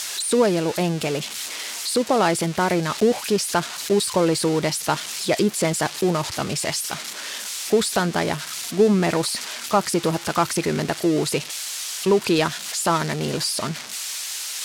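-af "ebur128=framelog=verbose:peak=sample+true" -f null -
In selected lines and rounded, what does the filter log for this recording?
Integrated loudness:
  I:         -22.3 LUFS
  Threshold: -32.3 LUFS
Loudness range:
  LRA:         1.9 LU
  Threshold: -42.2 LUFS
  LRA low:   -23.2 LUFS
  LRA high:  -21.3 LUFS
Sample peak:
  Peak:       -7.1 dBFS
True peak:
  Peak:       -7.1 dBFS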